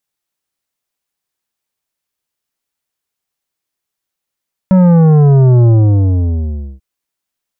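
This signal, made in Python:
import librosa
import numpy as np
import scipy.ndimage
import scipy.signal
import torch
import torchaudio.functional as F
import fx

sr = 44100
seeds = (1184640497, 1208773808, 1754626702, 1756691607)

y = fx.sub_drop(sr, level_db=-5.5, start_hz=190.0, length_s=2.09, drive_db=10.5, fade_s=1.13, end_hz=65.0)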